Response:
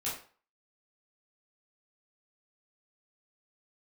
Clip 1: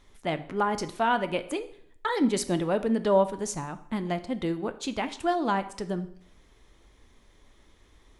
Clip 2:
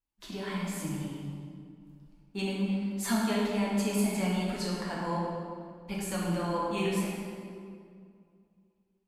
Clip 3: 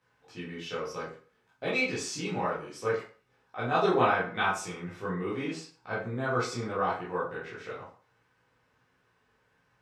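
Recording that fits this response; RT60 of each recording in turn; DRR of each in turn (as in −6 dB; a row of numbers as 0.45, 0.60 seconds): 3; 0.65, 2.3, 0.40 seconds; 10.5, −5.5, −9.0 decibels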